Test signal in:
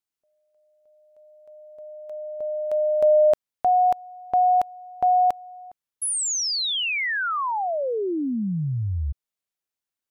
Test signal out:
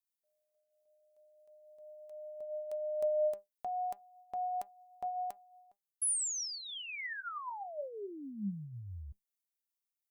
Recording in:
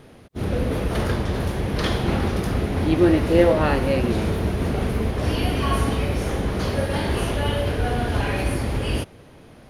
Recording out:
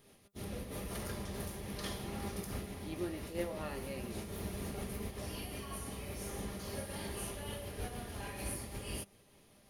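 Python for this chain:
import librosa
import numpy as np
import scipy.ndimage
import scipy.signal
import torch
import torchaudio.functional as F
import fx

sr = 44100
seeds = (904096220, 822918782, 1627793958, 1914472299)

y = scipy.signal.lfilter([1.0, -0.8], [1.0], x)
y = fx.rider(y, sr, range_db=3, speed_s=0.5)
y = fx.notch(y, sr, hz=1500.0, q=10.0)
y = fx.comb_fb(y, sr, f0_hz=200.0, decay_s=0.16, harmonics='all', damping=0.6, mix_pct=70)
y = fx.dynamic_eq(y, sr, hz=3500.0, q=1.1, threshold_db=-54.0, ratio=4.0, max_db=-4)
y = fx.am_noise(y, sr, seeds[0], hz=8.1, depth_pct=65)
y = F.gain(torch.from_numpy(y), 4.0).numpy()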